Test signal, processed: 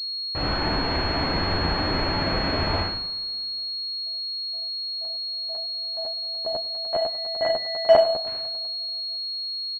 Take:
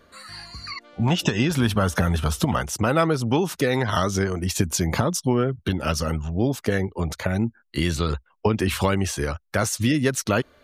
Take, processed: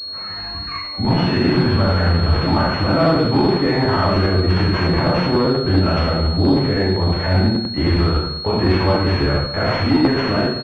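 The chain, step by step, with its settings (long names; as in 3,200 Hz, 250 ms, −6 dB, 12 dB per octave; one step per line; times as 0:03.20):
brickwall limiter −13 dBFS
coupled-rooms reverb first 0.63 s, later 2.7 s, from −25 dB, DRR −5.5 dB
harmonic generator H 5 −12 dB, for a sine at −2.5 dBFS
on a send: ambience of single reflections 43 ms −5 dB, 78 ms −4.5 dB
on the sum: regular buffer underruns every 0.10 s, samples 512, repeat, from 0:00.84
switching amplifier with a slow clock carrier 4,300 Hz
level −5.5 dB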